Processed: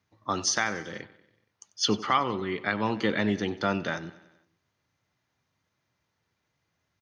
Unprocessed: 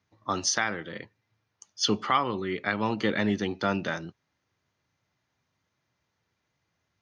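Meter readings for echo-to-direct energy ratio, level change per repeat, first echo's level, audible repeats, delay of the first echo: −16.0 dB, −4.5 dB, −18.0 dB, 4, 94 ms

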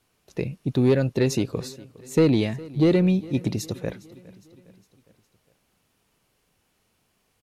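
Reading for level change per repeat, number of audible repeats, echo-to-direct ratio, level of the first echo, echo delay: −5.5 dB, 3, −19.5 dB, −21.0 dB, 409 ms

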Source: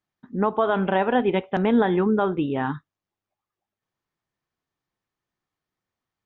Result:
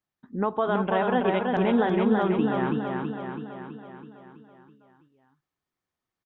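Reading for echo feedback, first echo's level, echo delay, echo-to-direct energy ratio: 59%, −3.5 dB, 328 ms, −1.5 dB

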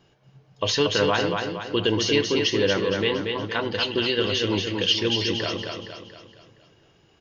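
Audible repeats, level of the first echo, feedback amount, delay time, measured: 5, −4.5 dB, 47%, 233 ms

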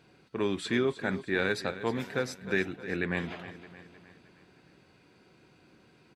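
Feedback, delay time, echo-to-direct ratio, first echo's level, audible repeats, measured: 51%, 310 ms, −12.5 dB, −14.0 dB, 4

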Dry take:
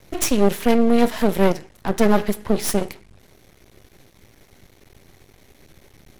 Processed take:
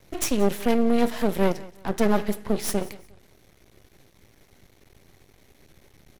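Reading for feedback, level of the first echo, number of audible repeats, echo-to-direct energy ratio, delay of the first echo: 30%, −20.0 dB, 2, −19.5 dB, 178 ms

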